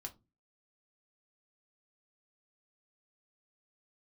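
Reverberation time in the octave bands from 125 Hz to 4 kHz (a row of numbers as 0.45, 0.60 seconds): 0.45, 0.45, 0.30, 0.20, 0.15, 0.15 seconds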